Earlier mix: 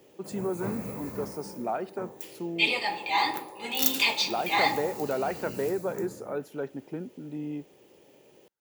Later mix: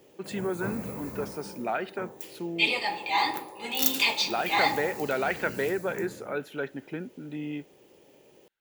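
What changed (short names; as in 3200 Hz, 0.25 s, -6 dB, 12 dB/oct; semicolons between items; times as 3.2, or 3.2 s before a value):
speech: add band shelf 2400 Hz +11.5 dB; master: remove HPF 53 Hz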